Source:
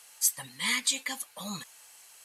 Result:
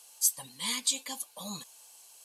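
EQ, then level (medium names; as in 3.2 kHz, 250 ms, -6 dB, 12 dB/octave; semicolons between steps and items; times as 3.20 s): bass shelf 150 Hz -8 dB; peaking EQ 1.9 kHz -13.5 dB 0.71 oct; band-stop 1.3 kHz, Q 8; 0.0 dB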